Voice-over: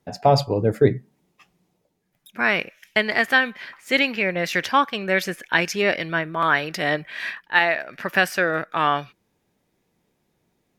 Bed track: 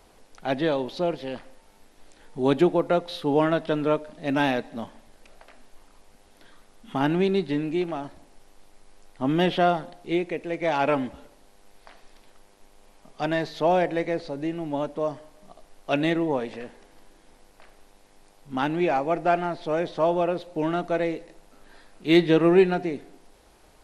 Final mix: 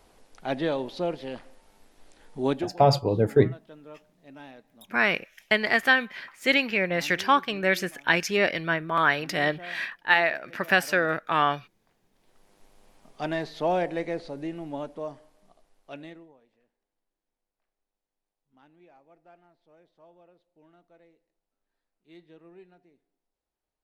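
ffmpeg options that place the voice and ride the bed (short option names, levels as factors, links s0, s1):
-filter_complex "[0:a]adelay=2550,volume=0.75[s0];[1:a]volume=6.31,afade=t=out:st=2.46:d=0.26:silence=0.1,afade=t=in:st=12.12:d=0.47:silence=0.112202,afade=t=out:st=14.26:d=2.08:silence=0.0334965[s1];[s0][s1]amix=inputs=2:normalize=0"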